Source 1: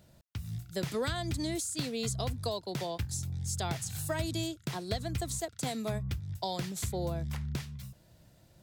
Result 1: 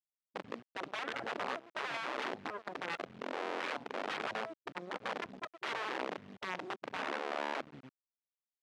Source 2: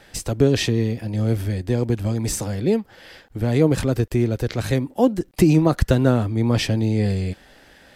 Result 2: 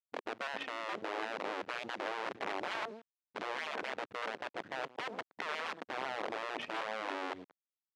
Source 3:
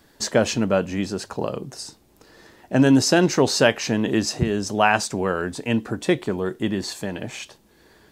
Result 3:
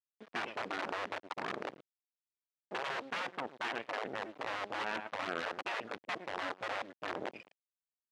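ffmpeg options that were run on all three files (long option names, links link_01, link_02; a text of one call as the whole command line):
ffmpeg -i in.wav -af "aemphasis=mode=reproduction:type=50kf,afftfilt=real='re*gte(hypot(re,im),0.0708)':imag='im*gte(hypot(re,im),0.0708)':win_size=1024:overlap=0.75,aecho=1:1:113|226:0.1|0.016,areverse,acompressor=threshold=-28dB:ratio=16,areverse,alimiter=level_in=5.5dB:limit=-24dB:level=0:latency=1:release=299,volume=-5.5dB,aphaser=in_gain=1:out_gain=1:delay=4.8:decay=0.49:speed=0.53:type=sinusoidal,aresample=8000,aeval=exprs='sgn(val(0))*max(abs(val(0))-0.00141,0)':channel_layout=same,aresample=44100,acrusher=bits=7:dc=4:mix=0:aa=0.000001,afftfilt=real='re*lt(hypot(re,im),0.0355)':imag='im*lt(hypot(re,im),0.0355)':win_size=1024:overlap=0.75,highpass=270,lowpass=2900,volume=8.5dB" out.wav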